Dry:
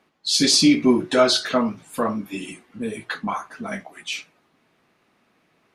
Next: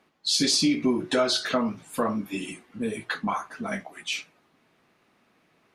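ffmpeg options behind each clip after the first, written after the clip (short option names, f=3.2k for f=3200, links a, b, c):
-af "acompressor=threshold=-20dB:ratio=3,volume=-1dB"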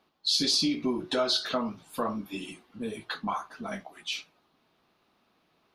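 -af "equalizer=f=125:t=o:w=1:g=-6,equalizer=f=250:t=o:w=1:g=-4,equalizer=f=500:t=o:w=1:g=-4,equalizer=f=2k:t=o:w=1:g=-9,equalizer=f=4k:t=o:w=1:g=4,equalizer=f=8k:t=o:w=1:g=-10"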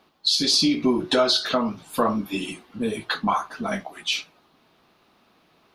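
-af "alimiter=limit=-18.5dB:level=0:latency=1:release=439,volume=9dB"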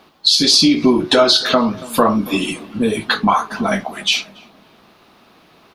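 -filter_complex "[0:a]asplit=2[a][b];[b]acompressor=threshold=-28dB:ratio=6,volume=-2.5dB[c];[a][c]amix=inputs=2:normalize=0,asplit=2[d][e];[e]adelay=282,lowpass=f=970:p=1,volume=-18dB,asplit=2[f][g];[g]adelay=282,lowpass=f=970:p=1,volume=0.47,asplit=2[h][i];[i]adelay=282,lowpass=f=970:p=1,volume=0.47,asplit=2[j][k];[k]adelay=282,lowpass=f=970:p=1,volume=0.47[l];[d][f][h][j][l]amix=inputs=5:normalize=0,volume=6dB"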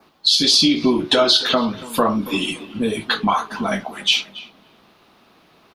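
-filter_complex "[0:a]asplit=2[a][b];[b]adelay=280,highpass=300,lowpass=3.4k,asoftclip=type=hard:threshold=-9.5dB,volume=-18dB[c];[a][c]amix=inputs=2:normalize=0,adynamicequalizer=threshold=0.0251:dfrequency=3200:dqfactor=3:tfrequency=3200:tqfactor=3:attack=5:release=100:ratio=0.375:range=3.5:mode=boostabove:tftype=bell,volume=-4dB"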